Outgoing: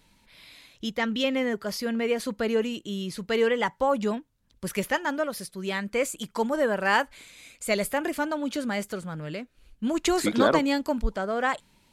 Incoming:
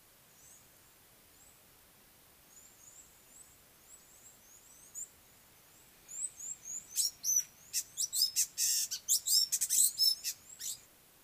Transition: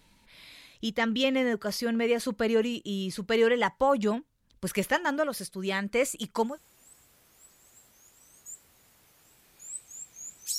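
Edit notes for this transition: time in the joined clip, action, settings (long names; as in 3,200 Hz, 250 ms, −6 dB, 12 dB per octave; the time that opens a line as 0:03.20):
outgoing
0:06.49: continue with incoming from 0:02.98, crossfade 0.18 s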